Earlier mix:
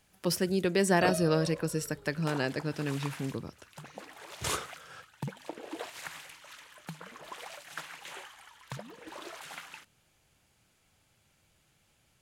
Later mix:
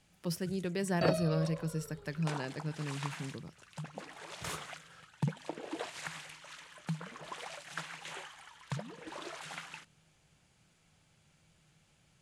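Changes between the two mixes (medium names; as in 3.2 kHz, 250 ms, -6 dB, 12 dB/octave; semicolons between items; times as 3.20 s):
speech -9.5 dB; first sound: add low-pass 10 kHz 24 dB/octave; master: add peaking EQ 160 Hz +9.5 dB 0.38 oct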